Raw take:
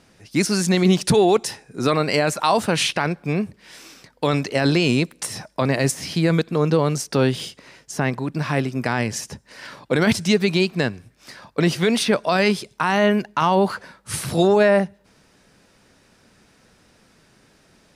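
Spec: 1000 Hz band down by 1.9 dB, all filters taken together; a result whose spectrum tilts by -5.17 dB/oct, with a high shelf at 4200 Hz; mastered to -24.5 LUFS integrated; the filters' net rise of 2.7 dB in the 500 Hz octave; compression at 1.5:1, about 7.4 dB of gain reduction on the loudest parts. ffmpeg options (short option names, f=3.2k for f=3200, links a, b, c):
-af "equalizer=f=500:t=o:g=4.5,equalizer=f=1k:t=o:g=-4,highshelf=f=4.2k:g=-5,acompressor=threshold=-31dB:ratio=1.5,volume=1.5dB"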